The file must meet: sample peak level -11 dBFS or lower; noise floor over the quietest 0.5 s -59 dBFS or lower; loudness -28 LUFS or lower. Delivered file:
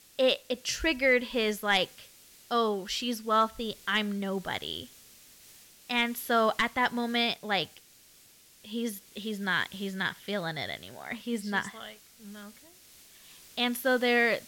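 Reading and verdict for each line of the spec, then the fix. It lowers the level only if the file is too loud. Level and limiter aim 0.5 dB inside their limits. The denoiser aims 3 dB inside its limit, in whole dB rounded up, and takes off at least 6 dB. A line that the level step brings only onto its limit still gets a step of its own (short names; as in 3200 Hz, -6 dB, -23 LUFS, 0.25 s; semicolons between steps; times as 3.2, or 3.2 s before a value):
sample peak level -13.5 dBFS: OK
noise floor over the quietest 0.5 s -58 dBFS: fail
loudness -29.5 LUFS: OK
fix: denoiser 6 dB, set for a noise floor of -58 dBFS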